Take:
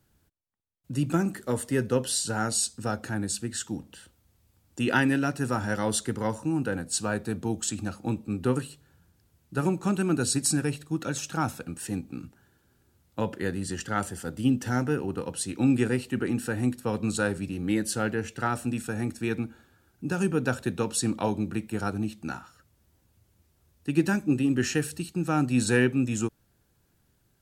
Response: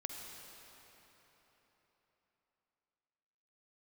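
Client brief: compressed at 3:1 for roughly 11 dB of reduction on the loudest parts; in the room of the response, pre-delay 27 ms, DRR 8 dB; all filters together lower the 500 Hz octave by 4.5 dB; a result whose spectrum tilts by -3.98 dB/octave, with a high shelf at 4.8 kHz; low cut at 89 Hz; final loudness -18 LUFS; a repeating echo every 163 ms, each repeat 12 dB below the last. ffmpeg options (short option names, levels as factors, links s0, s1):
-filter_complex "[0:a]highpass=89,equalizer=f=500:t=o:g=-6,highshelf=f=4800:g=5.5,acompressor=threshold=0.02:ratio=3,aecho=1:1:163|326|489:0.251|0.0628|0.0157,asplit=2[s0][s1];[1:a]atrim=start_sample=2205,adelay=27[s2];[s1][s2]afir=irnorm=-1:irlink=0,volume=0.447[s3];[s0][s3]amix=inputs=2:normalize=0,volume=7.5"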